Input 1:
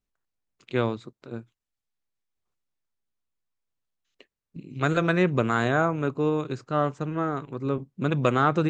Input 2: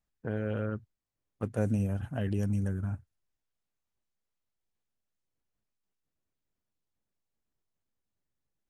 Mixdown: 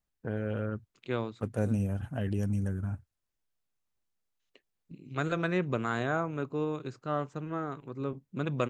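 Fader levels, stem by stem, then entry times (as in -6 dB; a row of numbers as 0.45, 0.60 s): -7.5, -0.5 dB; 0.35, 0.00 s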